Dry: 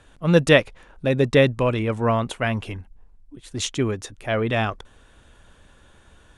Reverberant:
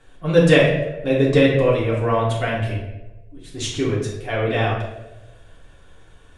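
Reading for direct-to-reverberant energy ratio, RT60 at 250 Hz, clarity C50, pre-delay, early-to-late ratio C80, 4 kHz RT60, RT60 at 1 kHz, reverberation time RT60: −6.5 dB, 1.1 s, 3.0 dB, 3 ms, 5.5 dB, 0.65 s, 0.90 s, 1.1 s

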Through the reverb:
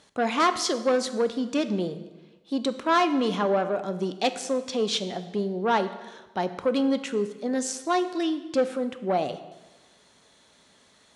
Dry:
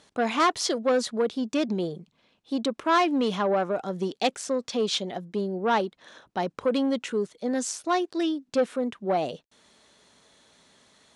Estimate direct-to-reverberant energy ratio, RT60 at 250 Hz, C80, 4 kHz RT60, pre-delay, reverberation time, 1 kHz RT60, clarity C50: 10.0 dB, 1.2 s, 14.0 dB, 1.0 s, 3 ms, 1.2 s, 1.2 s, 12.5 dB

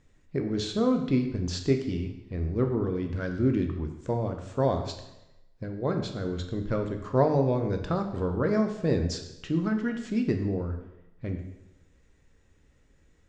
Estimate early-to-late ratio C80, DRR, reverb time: 10.0 dB, 4.5 dB, 0.95 s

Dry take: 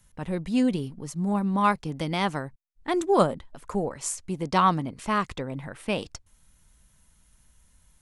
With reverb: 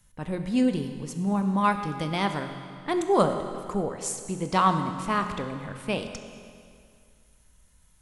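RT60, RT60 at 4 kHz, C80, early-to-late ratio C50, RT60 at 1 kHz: 2.2 s, 2.1 s, 8.5 dB, 7.5 dB, 2.2 s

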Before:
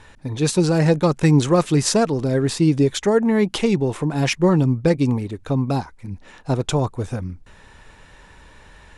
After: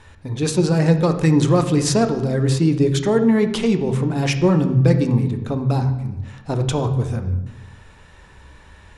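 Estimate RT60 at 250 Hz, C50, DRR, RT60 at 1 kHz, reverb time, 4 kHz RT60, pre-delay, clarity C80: 1.1 s, 10.0 dB, 7.0 dB, 0.95 s, 1.1 s, 0.80 s, 3 ms, 12.5 dB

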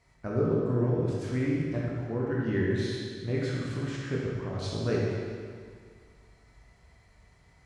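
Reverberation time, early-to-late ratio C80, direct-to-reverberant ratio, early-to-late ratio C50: 2.0 s, 0.0 dB, −5.0 dB, −2.0 dB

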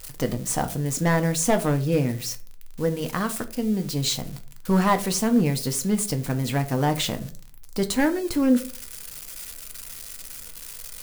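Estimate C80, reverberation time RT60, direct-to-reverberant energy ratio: 20.0 dB, 0.45 s, 7.0 dB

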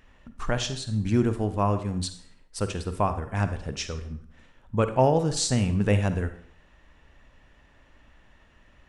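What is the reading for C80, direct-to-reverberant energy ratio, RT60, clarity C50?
14.5 dB, 9.5 dB, 0.60 s, 11.0 dB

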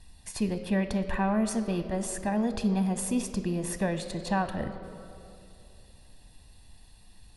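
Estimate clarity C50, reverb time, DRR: 10.5 dB, 2.6 s, 9.0 dB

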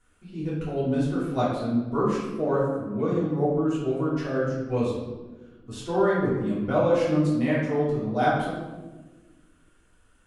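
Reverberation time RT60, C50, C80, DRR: 1.3 s, 0.5 dB, 3.5 dB, −9.5 dB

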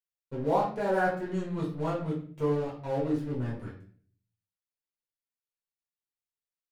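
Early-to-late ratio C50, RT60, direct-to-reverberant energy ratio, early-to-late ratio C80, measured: 6.0 dB, 0.45 s, −6.0 dB, 10.5 dB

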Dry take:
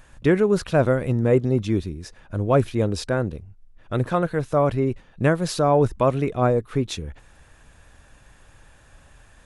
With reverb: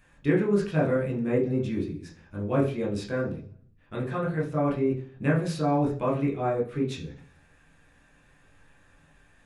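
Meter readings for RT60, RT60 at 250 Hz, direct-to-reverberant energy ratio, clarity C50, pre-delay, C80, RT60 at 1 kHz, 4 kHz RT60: 0.45 s, 0.70 s, −3.0 dB, 9.5 dB, 13 ms, 14.0 dB, 0.40 s, 0.60 s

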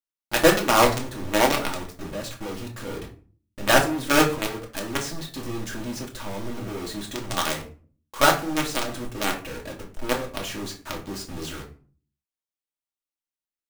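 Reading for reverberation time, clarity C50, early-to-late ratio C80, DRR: 0.40 s, 10.5 dB, 15.0 dB, 0.0 dB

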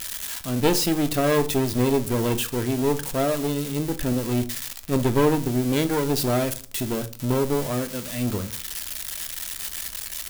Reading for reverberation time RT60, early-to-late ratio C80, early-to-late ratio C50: 0.40 s, 22.5 dB, 17.5 dB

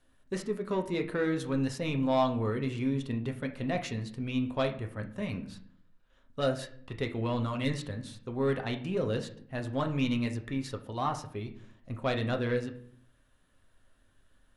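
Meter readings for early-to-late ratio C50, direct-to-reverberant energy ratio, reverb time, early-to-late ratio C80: 12.0 dB, 4.0 dB, 0.55 s, 16.0 dB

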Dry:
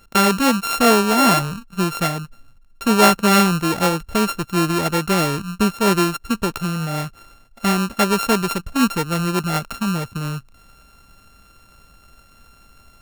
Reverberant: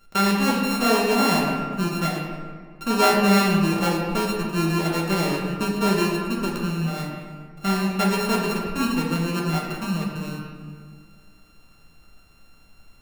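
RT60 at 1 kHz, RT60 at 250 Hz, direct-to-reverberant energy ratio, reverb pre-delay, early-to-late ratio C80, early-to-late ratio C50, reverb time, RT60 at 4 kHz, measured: 1.6 s, 2.4 s, −3.0 dB, 5 ms, 2.5 dB, 1.0 dB, 1.8 s, 1.1 s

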